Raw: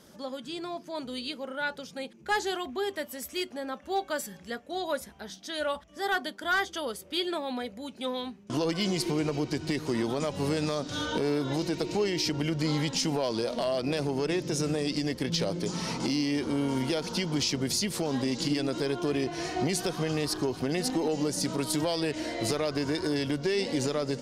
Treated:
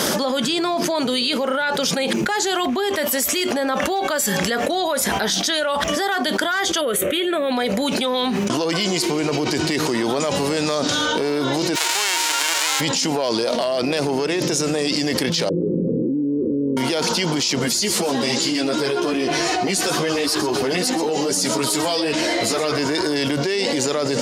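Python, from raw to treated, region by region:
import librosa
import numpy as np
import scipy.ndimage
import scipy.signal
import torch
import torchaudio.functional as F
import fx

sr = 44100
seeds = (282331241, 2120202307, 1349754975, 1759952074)

y = fx.chain(x, sr, fx.peak_eq(hz=730.0, db=9.5, octaves=1.5),
    fx.fixed_phaser(hz=2100.0, stages=4), at=(6.81, 7.52))
y = fx.envelope_flatten(y, sr, power=0.1, at=(11.75, 12.79), fade=0.02)
y = fx.bessel_highpass(y, sr, hz=530.0, order=4, at=(11.75, 12.79), fade=0.02)
y = fx.air_absorb(y, sr, metres=50.0, at=(11.75, 12.79), fade=0.02)
y = fx.chain(y, sr, fx.steep_lowpass(hz=530.0, slope=96),
    fx.hum_notches(base_hz=60, count=3), at=(15.49, 16.77))
y = fx.chain(y, sr, fx.echo_single(ms=123, db=-13.5),
    fx.ensemble(), at=(17.59, 22.79))
y = fx.highpass(y, sr, hz=400.0, slope=6)
y = fx.dynamic_eq(y, sr, hz=7100.0, q=7.3, threshold_db=-56.0, ratio=4.0, max_db=5)
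y = fx.env_flatten(y, sr, amount_pct=100)
y = y * librosa.db_to_amplitude(3.5)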